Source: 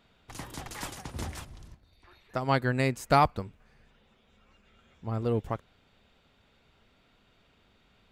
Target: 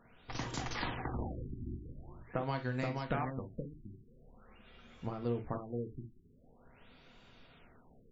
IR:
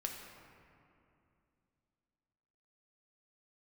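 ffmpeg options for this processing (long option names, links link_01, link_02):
-filter_complex "[0:a]acompressor=threshold=-36dB:ratio=16,aeval=exprs='0.0794*(cos(1*acos(clip(val(0)/0.0794,-1,1)))-cos(1*PI/2))+0.00158*(cos(7*acos(clip(val(0)/0.0794,-1,1)))-cos(7*PI/2))':channel_layout=same,aecho=1:1:477:0.631[link_01];[1:a]atrim=start_sample=2205,afade=type=out:start_time=0.14:duration=0.01,atrim=end_sample=6615,asetrate=57330,aresample=44100[link_02];[link_01][link_02]afir=irnorm=-1:irlink=0,afftfilt=real='re*lt(b*sr/1024,380*pow(7600/380,0.5+0.5*sin(2*PI*0.45*pts/sr)))':imag='im*lt(b*sr/1024,380*pow(7600/380,0.5+0.5*sin(2*PI*0.45*pts/sr)))':win_size=1024:overlap=0.75,volume=8dB"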